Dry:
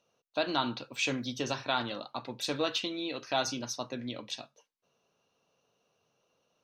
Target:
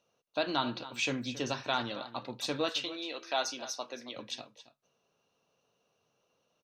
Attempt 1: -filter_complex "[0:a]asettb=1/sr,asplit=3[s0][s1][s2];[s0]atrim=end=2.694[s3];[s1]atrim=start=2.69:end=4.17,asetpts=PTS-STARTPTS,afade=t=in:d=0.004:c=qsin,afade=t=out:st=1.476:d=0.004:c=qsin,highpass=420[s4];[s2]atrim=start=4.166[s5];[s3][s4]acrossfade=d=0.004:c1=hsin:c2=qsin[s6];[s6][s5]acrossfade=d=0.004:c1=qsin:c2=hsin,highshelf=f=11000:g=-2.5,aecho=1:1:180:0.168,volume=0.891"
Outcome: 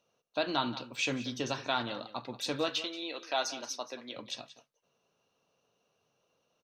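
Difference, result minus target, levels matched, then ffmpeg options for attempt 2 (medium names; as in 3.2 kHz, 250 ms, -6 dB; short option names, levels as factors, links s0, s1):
echo 93 ms early
-filter_complex "[0:a]asettb=1/sr,asplit=3[s0][s1][s2];[s0]atrim=end=2.694[s3];[s1]atrim=start=2.69:end=4.17,asetpts=PTS-STARTPTS,afade=t=in:d=0.004:c=qsin,afade=t=out:st=1.476:d=0.004:c=qsin,highpass=420[s4];[s2]atrim=start=4.166[s5];[s3][s4]acrossfade=d=0.004:c1=hsin:c2=qsin[s6];[s6][s5]acrossfade=d=0.004:c1=qsin:c2=hsin,highshelf=f=11000:g=-2.5,aecho=1:1:273:0.168,volume=0.891"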